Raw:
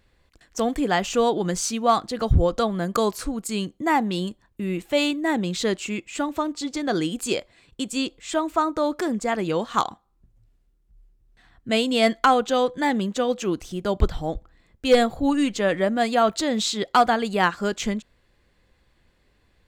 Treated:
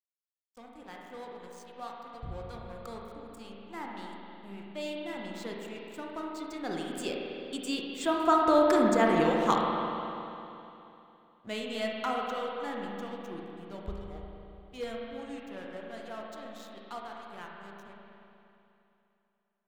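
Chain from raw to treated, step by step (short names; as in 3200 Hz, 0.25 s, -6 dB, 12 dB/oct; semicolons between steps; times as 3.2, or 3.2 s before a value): Doppler pass-by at 8.74, 12 m/s, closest 8.1 m; crossover distortion -49 dBFS; spring tank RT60 3 s, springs 35/50 ms, chirp 40 ms, DRR -1.5 dB; gain -2 dB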